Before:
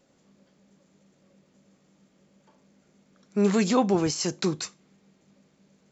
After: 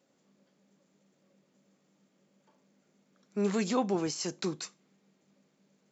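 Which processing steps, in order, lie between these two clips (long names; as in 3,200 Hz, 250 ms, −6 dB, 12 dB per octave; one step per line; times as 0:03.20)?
high-pass filter 160 Hz 12 dB per octave
level −6.5 dB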